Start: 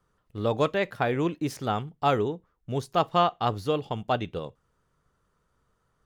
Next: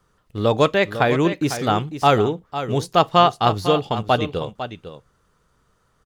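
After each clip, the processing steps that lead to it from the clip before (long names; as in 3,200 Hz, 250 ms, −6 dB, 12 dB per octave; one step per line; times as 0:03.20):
parametric band 5,300 Hz +3.5 dB 2.3 octaves
on a send: single-tap delay 502 ms −11 dB
on the sum: level +7.5 dB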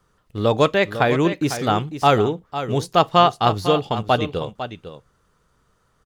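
no processing that can be heard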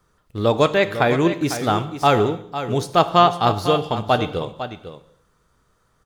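high-shelf EQ 11,000 Hz +3 dB
notch filter 2,900 Hz, Q 21
convolution reverb, pre-delay 3 ms, DRR 11.5 dB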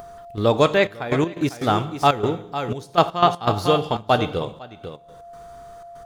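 gate pattern "xx.xxxx..x.x.xx" 121 BPM −12 dB
steady tone 690 Hz −52 dBFS
upward compression, threshold −29 dBFS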